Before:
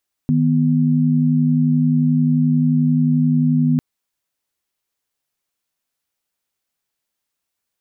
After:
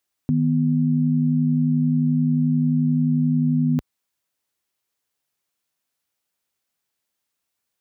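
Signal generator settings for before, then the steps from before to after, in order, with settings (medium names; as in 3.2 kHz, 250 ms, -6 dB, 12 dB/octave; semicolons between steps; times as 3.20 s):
chord D#3/B3 sine, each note -15.5 dBFS 3.50 s
high-pass 53 Hz; peak limiter -13.5 dBFS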